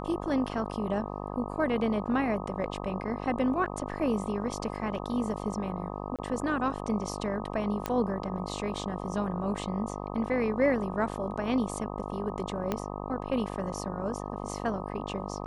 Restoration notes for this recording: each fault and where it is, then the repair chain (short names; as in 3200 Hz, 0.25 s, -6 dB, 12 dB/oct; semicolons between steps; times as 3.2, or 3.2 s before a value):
buzz 50 Hz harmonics 25 -37 dBFS
6.16–6.19 gap 27 ms
7.86 pop -15 dBFS
12.72 pop -15 dBFS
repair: de-click; de-hum 50 Hz, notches 25; interpolate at 6.16, 27 ms